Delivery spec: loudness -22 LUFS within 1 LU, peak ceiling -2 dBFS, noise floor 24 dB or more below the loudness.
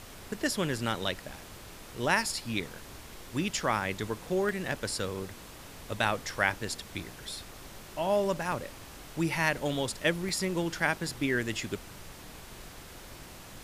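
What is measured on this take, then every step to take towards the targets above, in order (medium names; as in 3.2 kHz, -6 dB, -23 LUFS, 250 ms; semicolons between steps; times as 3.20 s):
dropouts 7; longest dropout 1.5 ms; noise floor -48 dBFS; noise floor target -56 dBFS; loudness -31.5 LUFS; peak level -10.0 dBFS; loudness target -22.0 LUFS
-> interpolate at 0.73/2.22/3.57/4.49/8.52/10.29/11.07 s, 1.5 ms; noise print and reduce 8 dB; trim +9.5 dB; peak limiter -2 dBFS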